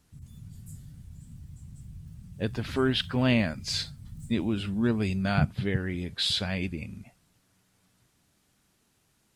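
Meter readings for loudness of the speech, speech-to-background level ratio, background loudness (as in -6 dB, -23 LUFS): -28.5 LUFS, 17.5 dB, -46.0 LUFS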